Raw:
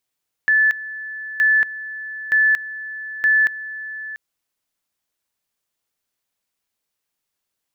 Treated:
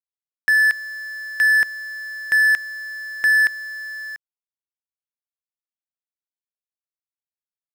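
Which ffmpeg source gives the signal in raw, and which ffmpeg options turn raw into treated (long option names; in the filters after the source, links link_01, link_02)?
-f lavfi -i "aevalsrc='pow(10,(-12-16*gte(mod(t,0.92),0.23))/20)*sin(2*PI*1740*t)':duration=3.68:sample_rate=44100"
-af "adynamicsmooth=sensitivity=5.5:basefreq=850,acrusher=bits=8:dc=4:mix=0:aa=0.000001"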